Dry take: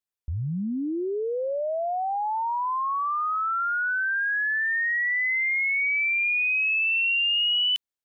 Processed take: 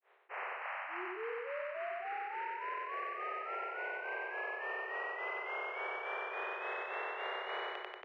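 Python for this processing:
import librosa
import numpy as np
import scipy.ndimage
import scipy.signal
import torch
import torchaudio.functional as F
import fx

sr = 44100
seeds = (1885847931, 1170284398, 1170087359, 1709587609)

p1 = fx.spec_flatten(x, sr, power=0.16)
p2 = scipy.signal.sosfilt(scipy.signal.butter(4, 2000.0, 'lowpass', fs=sr, output='sos'), p1)
p3 = fx.spec_gate(p2, sr, threshold_db=-30, keep='strong')
p4 = scipy.signal.sosfilt(scipy.signal.cheby1(8, 1.0, 370.0, 'highpass', fs=sr, output='sos'), p3)
p5 = fx.peak_eq(p4, sr, hz=1500.0, db=-3.5, octaves=0.51)
p6 = 10.0 ** (-32.5 / 20.0) * np.tanh(p5 / 10.0 ** (-32.5 / 20.0))
p7 = p5 + F.gain(torch.from_numpy(p6), -11.0).numpy()
p8 = fx.granulator(p7, sr, seeds[0], grain_ms=241.0, per_s=3.5, spray_ms=30.0, spread_st=0)
p9 = p8 + fx.echo_feedback(p8, sr, ms=93, feedback_pct=31, wet_db=-3.0, dry=0)
p10 = fx.env_flatten(p9, sr, amount_pct=70)
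y = F.gain(torch.from_numpy(p10), -4.0).numpy()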